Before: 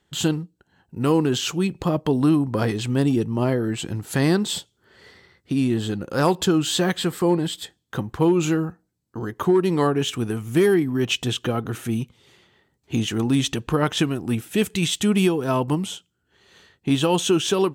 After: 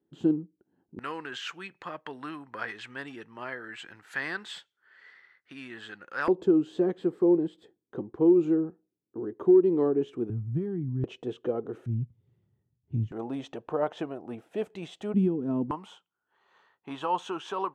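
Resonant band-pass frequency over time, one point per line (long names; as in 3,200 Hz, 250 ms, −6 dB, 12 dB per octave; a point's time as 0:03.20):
resonant band-pass, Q 2.6
310 Hz
from 0:00.99 1,700 Hz
from 0:06.28 370 Hz
from 0:10.30 120 Hz
from 0:11.04 440 Hz
from 0:11.86 110 Hz
from 0:13.12 640 Hz
from 0:15.14 240 Hz
from 0:15.71 1,000 Hz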